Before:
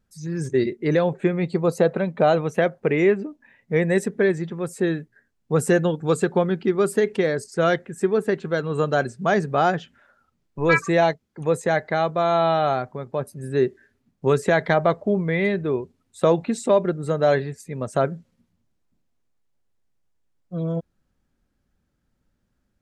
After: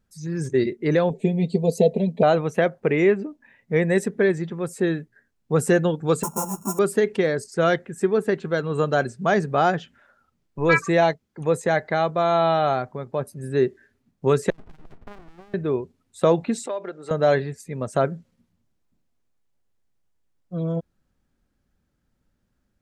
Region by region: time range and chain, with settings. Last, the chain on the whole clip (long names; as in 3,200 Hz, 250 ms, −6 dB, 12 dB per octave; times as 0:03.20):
0:01.10–0:02.23: Butterworth band-reject 1,400 Hz, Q 0.61 + comb filter 4.5 ms, depth 77%
0:06.23–0:06.79: samples sorted by size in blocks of 32 samples + drawn EQ curve 220 Hz 0 dB, 350 Hz −9 dB, 690 Hz +1 dB, 980 Hz 0 dB, 1,700 Hz −23 dB, 4,300 Hz −28 dB, 6,200 Hz +5 dB + string-ensemble chorus
0:14.50–0:15.54: Chebyshev band-pass filter 230–1,200 Hz, order 5 + tube saturation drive 25 dB, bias 0.55 + windowed peak hold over 65 samples
0:16.66–0:17.11: downward compressor, threshold −22 dBFS + band-pass filter 470–6,500 Hz
whole clip: no processing